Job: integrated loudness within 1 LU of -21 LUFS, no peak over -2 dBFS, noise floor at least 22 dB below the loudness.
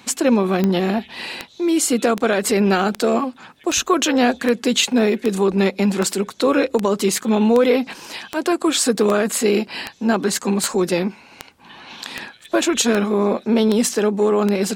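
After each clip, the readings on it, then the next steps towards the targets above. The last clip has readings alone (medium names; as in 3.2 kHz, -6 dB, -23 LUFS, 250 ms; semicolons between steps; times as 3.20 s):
clicks found 19; loudness -18.5 LUFS; peak level -3.5 dBFS; loudness target -21.0 LUFS
-> de-click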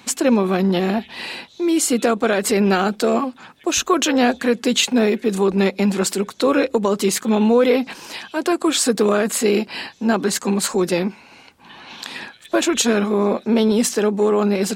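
clicks found 0; loudness -18.5 LUFS; peak level -4.5 dBFS; loudness target -21.0 LUFS
-> trim -2.5 dB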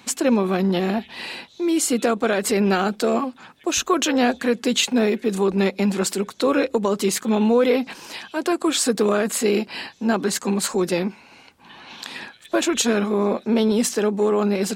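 loudness -21.0 LUFS; peak level -7.0 dBFS; noise floor -50 dBFS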